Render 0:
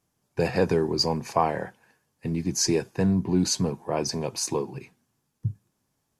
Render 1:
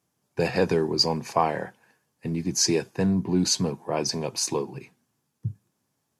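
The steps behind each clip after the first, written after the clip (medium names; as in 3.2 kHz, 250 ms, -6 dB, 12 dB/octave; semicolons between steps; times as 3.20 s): high-pass 100 Hz; dynamic bell 3.6 kHz, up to +4 dB, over -39 dBFS, Q 0.79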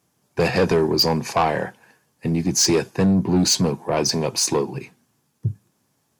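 saturation -19.5 dBFS, distortion -12 dB; trim +8 dB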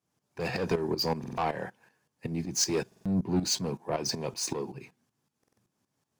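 median filter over 3 samples; tremolo saw up 5.3 Hz, depth 75%; buffer glitch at 1.19/2.87/5.39 s, samples 2048, times 3; trim -7 dB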